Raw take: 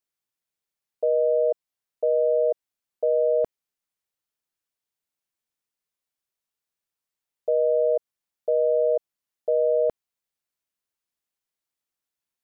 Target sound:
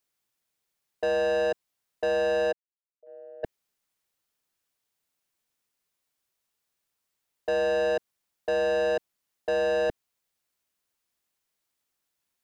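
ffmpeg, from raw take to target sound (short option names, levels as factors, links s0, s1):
-filter_complex "[0:a]asplit=3[s0][s1][s2];[s0]afade=t=out:st=2.51:d=0.02[s3];[s1]agate=range=0.0126:threshold=0.158:ratio=16:detection=peak,afade=t=in:st=2.51:d=0.02,afade=t=out:st=3.43:d=0.02[s4];[s2]afade=t=in:st=3.43:d=0.02[s5];[s3][s4][s5]amix=inputs=3:normalize=0,acrossover=split=280[s6][s7];[s7]asoftclip=type=tanh:threshold=0.0251[s8];[s6][s8]amix=inputs=2:normalize=0,volume=2.11"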